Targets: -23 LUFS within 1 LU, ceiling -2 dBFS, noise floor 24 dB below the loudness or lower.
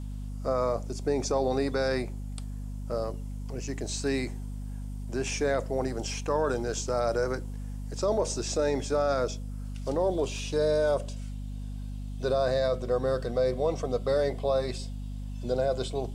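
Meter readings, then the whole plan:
hum 50 Hz; harmonics up to 250 Hz; hum level -34 dBFS; loudness -30.0 LUFS; peak -15.5 dBFS; loudness target -23.0 LUFS
-> notches 50/100/150/200/250 Hz; gain +7 dB

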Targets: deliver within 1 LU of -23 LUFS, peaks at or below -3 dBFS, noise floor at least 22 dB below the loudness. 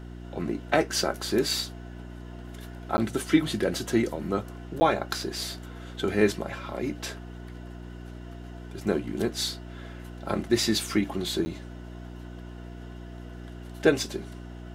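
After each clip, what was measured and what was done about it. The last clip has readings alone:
dropouts 3; longest dropout 10 ms; hum 60 Hz; harmonics up to 360 Hz; hum level -38 dBFS; loudness -28.0 LUFS; peak -5.0 dBFS; loudness target -23.0 LUFS
-> interpolate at 2.97/4.8/11.45, 10 ms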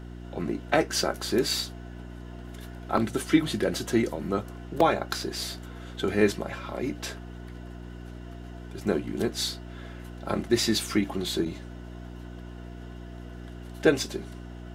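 dropouts 0; hum 60 Hz; harmonics up to 360 Hz; hum level -38 dBFS
-> de-hum 60 Hz, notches 6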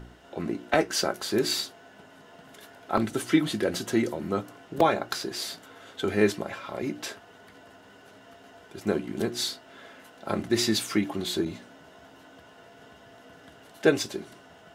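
hum none; loudness -28.0 LUFS; peak -5.5 dBFS; loudness target -23.0 LUFS
-> gain +5 dB; limiter -3 dBFS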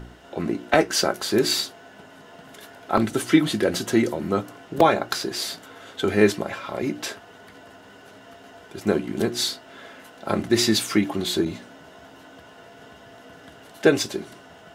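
loudness -23.0 LUFS; peak -3.0 dBFS; noise floor -48 dBFS

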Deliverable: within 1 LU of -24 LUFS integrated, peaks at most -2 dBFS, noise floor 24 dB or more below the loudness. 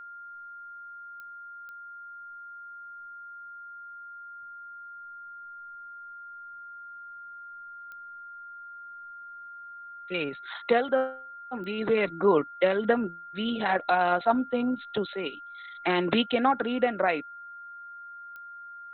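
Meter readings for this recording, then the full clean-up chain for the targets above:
clicks 5; steady tone 1400 Hz; tone level -41 dBFS; loudness -27.0 LUFS; peak -10.0 dBFS; loudness target -24.0 LUFS
-> de-click; notch 1400 Hz, Q 30; gain +3 dB

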